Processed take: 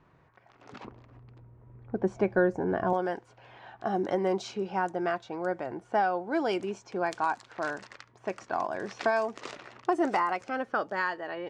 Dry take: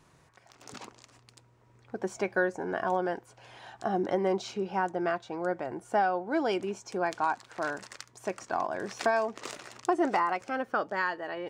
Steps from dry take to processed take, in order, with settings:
low-pass that shuts in the quiet parts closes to 2,100 Hz, open at −25 dBFS
0:00.84–0:02.93: spectral tilt −3.5 dB per octave
tape wow and flutter 20 cents

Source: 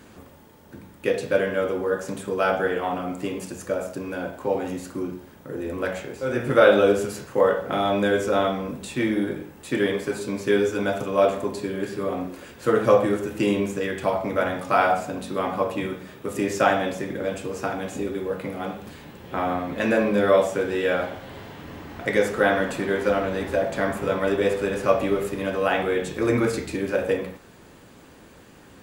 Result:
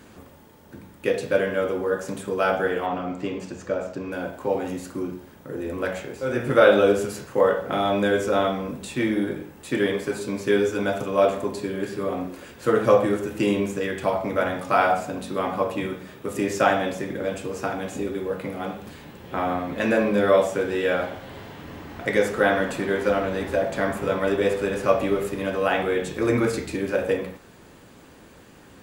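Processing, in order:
0:02.86–0:04.12: moving average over 4 samples

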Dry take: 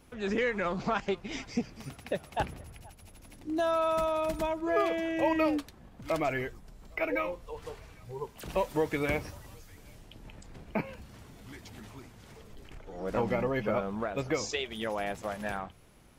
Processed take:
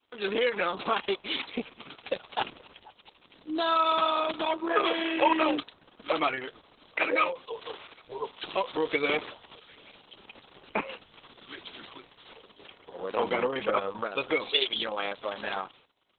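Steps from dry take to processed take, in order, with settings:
downward expander −49 dBFS
loudspeaker in its box 450–5,600 Hz, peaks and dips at 660 Hz −10 dB, 1,900 Hz −8 dB, 3,300 Hz +7 dB
level +8.5 dB
Opus 6 kbit/s 48,000 Hz

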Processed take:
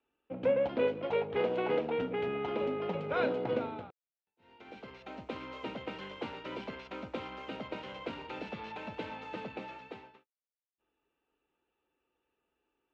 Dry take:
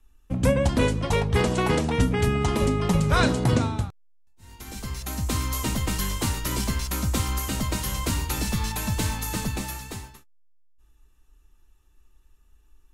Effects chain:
in parallel at −4 dB: gain into a clipping stage and back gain 29 dB
on the sum: loudspeaker in its box 350–2,700 Hz, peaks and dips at 500 Hz +6 dB, 1,100 Hz −8 dB, 1,800 Hz −8 dB
level −8 dB

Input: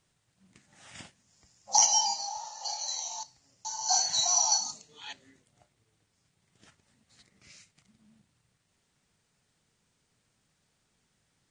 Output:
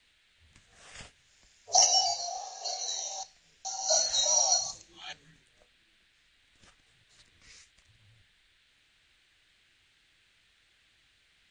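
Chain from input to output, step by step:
frequency shifter −110 Hz
noise in a band 1,500–4,100 Hz −68 dBFS

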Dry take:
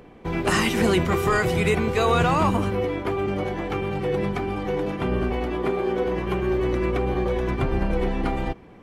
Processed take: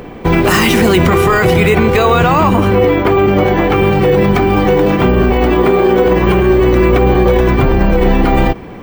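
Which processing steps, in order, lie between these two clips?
bad sample-rate conversion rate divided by 2×, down none, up hold
0:01.07–0:03.76: bass and treble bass −1 dB, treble −4 dB
boost into a limiter +18.5 dB
level −1 dB

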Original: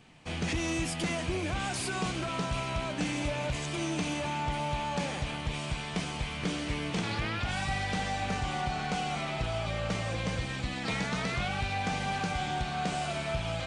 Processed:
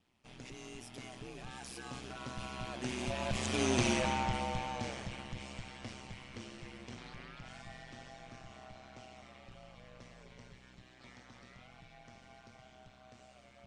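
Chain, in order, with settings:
source passing by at 0:03.82, 19 m/s, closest 6.4 metres
parametric band 5,600 Hz +3.5 dB 0.32 octaves
ring modulation 63 Hz
level +5.5 dB

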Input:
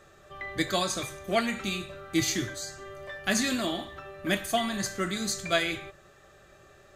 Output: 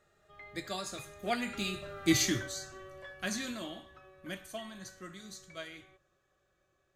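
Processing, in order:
source passing by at 0:02.11, 14 m/s, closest 5.9 metres

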